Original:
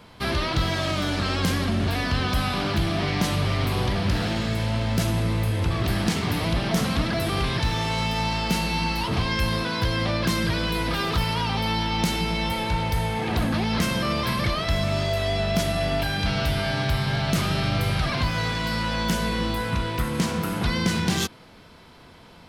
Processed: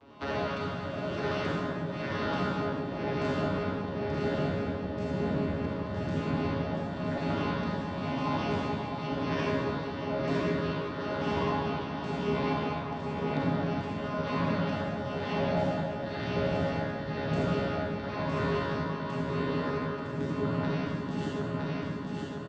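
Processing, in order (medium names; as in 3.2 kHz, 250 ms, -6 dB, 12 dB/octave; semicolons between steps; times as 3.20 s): vocoder on a broken chord bare fifth, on C#3, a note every 101 ms; peaking EQ 1.9 kHz -3 dB 0.77 oct; reverb removal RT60 1.6 s; tone controls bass +9 dB, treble -8 dB; spectral gate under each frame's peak -10 dB weak; feedback delay 960 ms, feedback 43%, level -6 dB; compression 3:1, threshold -37 dBFS, peak gain reduction 9 dB; tremolo triangle 0.99 Hz, depth 65%; reverberation RT60 1.8 s, pre-delay 28 ms, DRR -5.5 dB; trim +4.5 dB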